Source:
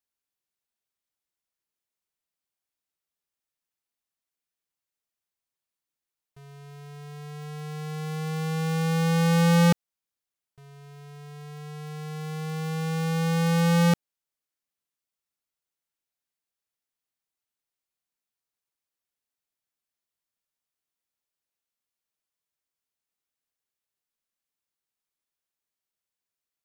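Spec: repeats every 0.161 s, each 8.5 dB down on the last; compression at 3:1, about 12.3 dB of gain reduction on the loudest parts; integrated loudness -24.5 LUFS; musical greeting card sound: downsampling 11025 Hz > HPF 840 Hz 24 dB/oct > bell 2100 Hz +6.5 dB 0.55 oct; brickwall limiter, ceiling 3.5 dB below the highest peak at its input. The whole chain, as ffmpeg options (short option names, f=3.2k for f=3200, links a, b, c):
-af "acompressor=threshold=-37dB:ratio=3,alimiter=level_in=9.5dB:limit=-24dB:level=0:latency=1,volume=-9.5dB,aecho=1:1:161|322|483|644:0.376|0.143|0.0543|0.0206,aresample=11025,aresample=44100,highpass=f=840:w=0.5412,highpass=f=840:w=1.3066,equalizer=f=2.1k:t=o:w=0.55:g=6.5,volume=19dB"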